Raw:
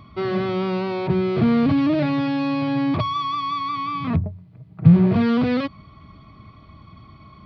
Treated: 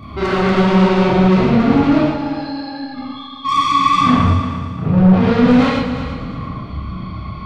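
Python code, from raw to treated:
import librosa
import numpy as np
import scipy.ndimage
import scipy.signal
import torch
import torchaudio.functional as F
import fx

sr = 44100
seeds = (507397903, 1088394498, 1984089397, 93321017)

p1 = fx.peak_eq(x, sr, hz=4900.0, db=-4.0, octaves=1.6)
p2 = fx.over_compress(p1, sr, threshold_db=-21.0, ratio=-0.5)
p3 = p1 + F.gain(torch.from_numpy(p2), 2.0).numpy()
p4 = fx.stiff_resonator(p3, sr, f0_hz=250.0, decay_s=0.7, stiffness=0.03, at=(1.97, 3.44), fade=0.02)
p5 = fx.vibrato(p4, sr, rate_hz=12.0, depth_cents=49.0)
p6 = fx.chorus_voices(p5, sr, voices=6, hz=1.3, base_ms=30, depth_ms=3.0, mix_pct=55)
p7 = 10.0 ** (-20.5 / 20.0) * np.tanh(p6 / 10.0 ** (-20.5 / 20.0))
p8 = p7 + fx.echo_heads(p7, sr, ms=115, heads='all three', feedback_pct=42, wet_db=-14.5, dry=0)
p9 = fx.rev_gated(p8, sr, seeds[0], gate_ms=180, shape='flat', drr_db=-3.5)
y = F.gain(torch.from_numpy(p9), 5.5).numpy()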